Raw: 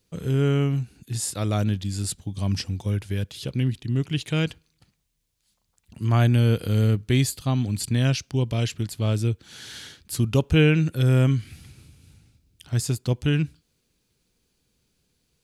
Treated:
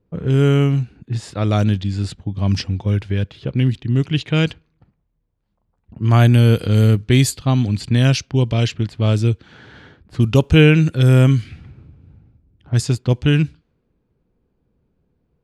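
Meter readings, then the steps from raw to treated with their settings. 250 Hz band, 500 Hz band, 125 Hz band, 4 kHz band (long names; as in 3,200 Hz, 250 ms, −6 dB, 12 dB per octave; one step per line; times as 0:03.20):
+7.0 dB, +7.0 dB, +7.0 dB, +6.0 dB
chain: low-pass that shuts in the quiet parts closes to 900 Hz, open at −16.5 dBFS
level +7 dB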